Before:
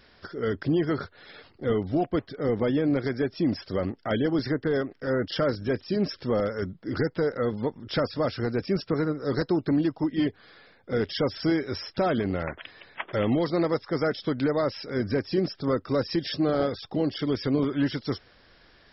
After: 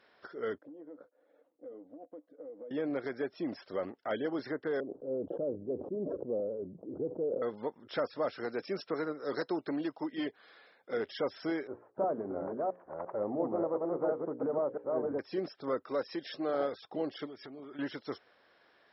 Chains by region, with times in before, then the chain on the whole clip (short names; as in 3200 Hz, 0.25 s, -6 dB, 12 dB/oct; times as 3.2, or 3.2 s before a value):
0.58–2.71 double band-pass 390 Hz, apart 0.74 oct + compressor 12:1, threshold -35 dBFS
4.8–7.42 inverse Chebyshev low-pass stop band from 1900 Hz, stop band 60 dB + sustainer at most 33 dB/s
8.38–10.97 HPF 120 Hz + high shelf 2900 Hz +8 dB
11.67–15.19 reverse delay 0.345 s, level -1.5 dB + LPF 1000 Hz 24 dB/oct + notches 60/120/180/240/300/360/420/480/540 Hz
15.83–16.54 HPF 40 Hz + low shelf 130 Hz -9.5 dB
17.26–17.79 compressor 10:1, threshold -32 dBFS + notch comb 510 Hz
whole clip: HPF 610 Hz 12 dB/oct; tilt -3.5 dB/oct; notch 4700 Hz, Q 12; gain -4.5 dB